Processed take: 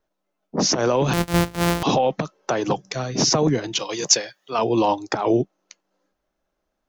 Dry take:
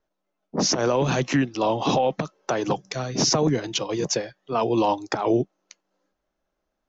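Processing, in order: 1.13–1.83 s: sorted samples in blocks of 256 samples; 3.79–4.59 s: tilt EQ +3.5 dB/octave; trim +2 dB

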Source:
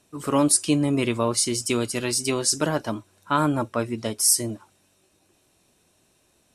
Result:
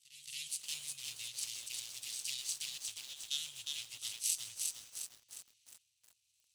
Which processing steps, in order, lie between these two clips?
median filter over 25 samples; in parallel at +0.5 dB: compression 12:1, threshold -32 dBFS, peak gain reduction 17 dB; on the sum: transient shaper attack -2 dB, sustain -8 dB; inverse Chebyshev band-stop 290–920 Hz, stop band 70 dB; feedback comb 140 Hz, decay 0.63 s, harmonics all, mix 30%; on a send at -17 dB: peaking EQ 6.4 kHz +5.5 dB 0.42 oct + reverberation RT60 5.0 s, pre-delay 95 ms; on the sum: rotary cabinet horn 1.2 Hz; low-pass 8.9 kHz 12 dB/octave; differentiator; reverse echo 223 ms -13.5 dB; bit-crushed delay 357 ms, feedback 55%, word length 11-bit, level -3 dB; trim +12.5 dB

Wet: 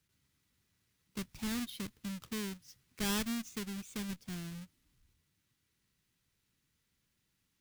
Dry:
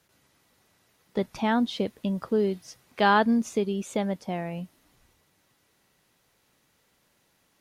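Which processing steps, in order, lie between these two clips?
square wave that keeps the level; amplifier tone stack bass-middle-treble 6-0-2; trim +1.5 dB

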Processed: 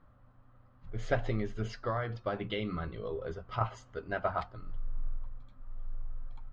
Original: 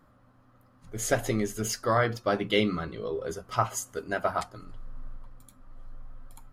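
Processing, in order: low-pass 4 kHz 24 dB/octave; peaking EQ 270 Hz -12 dB 2.5 oct; 1.15–3.61 s: compression 5:1, threshold -31 dBFS, peak gain reduction 7.5 dB; tilt shelf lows +6.5 dB, about 890 Hz

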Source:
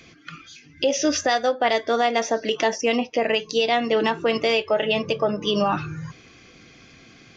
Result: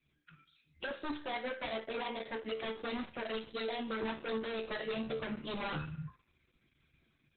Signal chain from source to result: expander on every frequency bin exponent 1.5; gate with hold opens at -59 dBFS; gain riding 2 s; wavefolder -23.5 dBFS; feedback comb 74 Hz, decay 0.52 s, harmonics all, mix 80%; trim +1 dB; Opus 8 kbps 48 kHz

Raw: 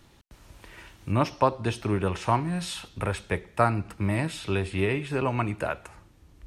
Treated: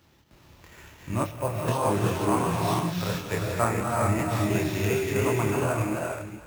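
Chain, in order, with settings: chunks repeated in reverse 238 ms, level -5.5 dB; high-pass 65 Hz; gated-style reverb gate 450 ms rising, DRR -1 dB; chorus 2.8 Hz, depth 7 ms; sample-rate reducer 9.2 kHz, jitter 0%; 1.24–1.68 s: graphic EQ 125/250/1000/4000/8000 Hz -4/-11/-9/-7/-7 dB

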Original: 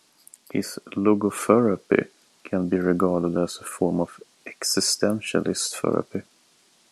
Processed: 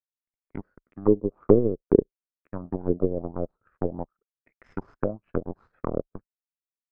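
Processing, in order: power-law waveshaper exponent 2; tilt EQ -4 dB/octave; touch-sensitive low-pass 430–2100 Hz down, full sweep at -17.5 dBFS; trim -6 dB

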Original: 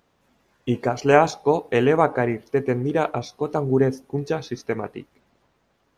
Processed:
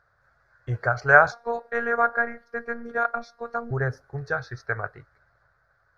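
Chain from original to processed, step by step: FFT filter 120 Hz 0 dB, 250 Hz -27 dB, 610 Hz -3 dB, 960 Hz -8 dB, 1.5 kHz +11 dB, 2.9 kHz -25 dB, 4.4 kHz -7 dB, 8.8 kHz -21 dB; 1.32–3.71 s: robot voice 235 Hz; trim +2 dB

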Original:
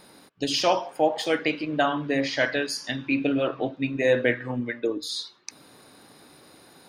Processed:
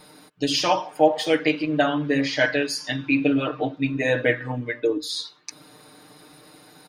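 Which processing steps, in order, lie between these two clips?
comb 6.6 ms, depth 86%

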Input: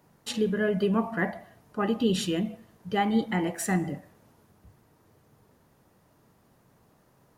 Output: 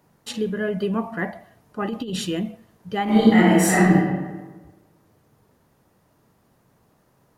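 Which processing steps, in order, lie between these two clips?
1.82–2.51 s: compressor with a negative ratio -26 dBFS, ratio -0.5; 3.04–3.96 s: reverb throw, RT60 1.3 s, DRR -11.5 dB; trim +1 dB

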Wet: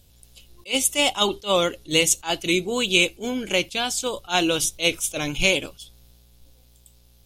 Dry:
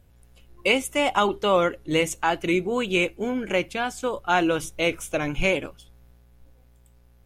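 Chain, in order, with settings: resonant high shelf 2.6 kHz +12 dB, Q 1.5; attacks held to a fixed rise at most 290 dB/s

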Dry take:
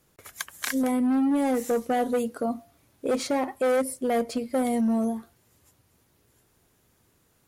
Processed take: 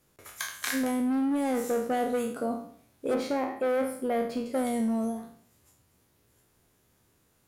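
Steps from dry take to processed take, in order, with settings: spectral sustain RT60 0.57 s; 3.14–4.46 s: peaking EQ 7.6 kHz -12.5 dB 1.5 oct; trim -4 dB

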